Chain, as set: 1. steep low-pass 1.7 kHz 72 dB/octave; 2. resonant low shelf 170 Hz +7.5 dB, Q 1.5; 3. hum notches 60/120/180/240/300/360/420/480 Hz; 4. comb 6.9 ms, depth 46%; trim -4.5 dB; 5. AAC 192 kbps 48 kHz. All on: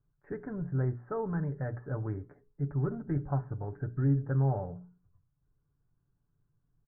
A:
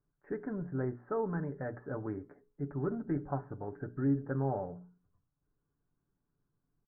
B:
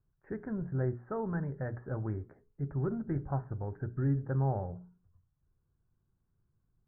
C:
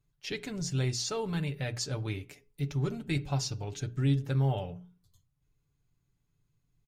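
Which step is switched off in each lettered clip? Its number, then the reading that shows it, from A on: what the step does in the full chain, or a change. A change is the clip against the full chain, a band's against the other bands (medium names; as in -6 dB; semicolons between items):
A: 2, loudness change -3.5 LU; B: 4, 125 Hz band -2.0 dB; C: 1, 2 kHz band +7.5 dB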